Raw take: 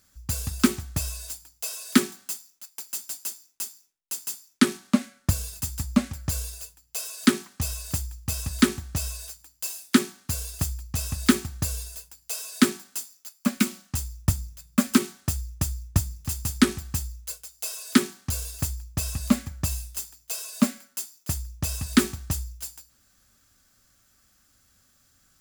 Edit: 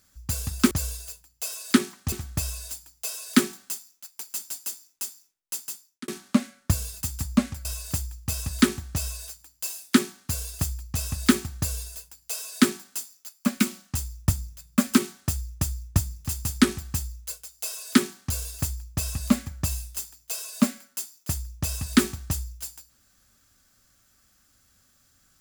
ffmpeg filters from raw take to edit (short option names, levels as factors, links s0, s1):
-filter_complex "[0:a]asplit=5[s0][s1][s2][s3][s4];[s0]atrim=end=0.712[s5];[s1]atrim=start=6.238:end=7.652[s6];[s2]atrim=start=0.708:end=4.67,asetpts=PTS-STARTPTS,afade=t=out:st=3.432:d=0.53[s7];[s3]atrim=start=4.67:end=6.242,asetpts=PTS-STARTPTS,afade=t=in:d=0.004:c=hsin[s8];[s4]atrim=start=7.648[s9];[s5][s6]acrossfade=d=0.004:c1=hsin:c2=hsin[s10];[s7][s8]concat=n=2:v=0:a=1[s11];[s10][s11]acrossfade=d=0.004:c1=hsin:c2=hsin[s12];[s12][s9]acrossfade=d=0.004:c1=hsin:c2=hsin"